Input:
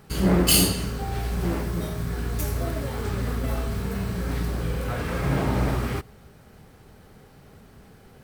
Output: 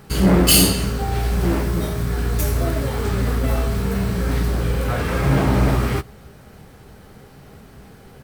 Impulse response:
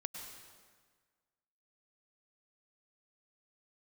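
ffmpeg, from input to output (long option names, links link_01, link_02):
-filter_complex "[0:a]asplit=2[link_01][link_02];[link_02]asoftclip=type=hard:threshold=-18.5dB,volume=-4.5dB[link_03];[link_01][link_03]amix=inputs=2:normalize=0,asplit=2[link_04][link_05];[link_05]adelay=15,volume=-12dB[link_06];[link_04][link_06]amix=inputs=2:normalize=0,volume=2dB"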